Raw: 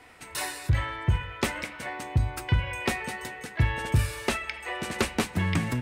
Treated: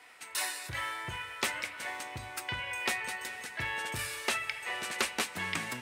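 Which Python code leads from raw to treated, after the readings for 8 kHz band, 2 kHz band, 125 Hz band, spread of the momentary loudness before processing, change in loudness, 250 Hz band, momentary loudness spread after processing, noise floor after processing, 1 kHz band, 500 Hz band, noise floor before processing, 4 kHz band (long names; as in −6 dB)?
0.0 dB, −1.5 dB, −20.5 dB, 8 LU, −5.5 dB, −14.0 dB, 6 LU, −48 dBFS, −4.0 dB, −8.5 dB, −45 dBFS, −0.5 dB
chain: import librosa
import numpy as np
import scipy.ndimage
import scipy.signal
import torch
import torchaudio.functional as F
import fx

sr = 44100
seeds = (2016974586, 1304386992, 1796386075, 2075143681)

y = fx.highpass(x, sr, hz=1200.0, slope=6)
y = fx.echo_diffused(y, sr, ms=454, feedback_pct=47, wet_db=-16.0)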